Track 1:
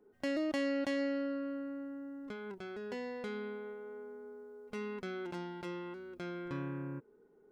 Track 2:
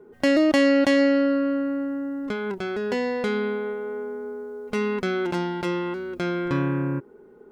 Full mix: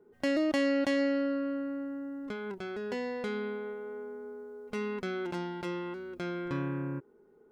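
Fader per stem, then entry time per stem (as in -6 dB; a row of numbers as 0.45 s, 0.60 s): -5.0 dB, -12.5 dB; 0.00 s, 0.00 s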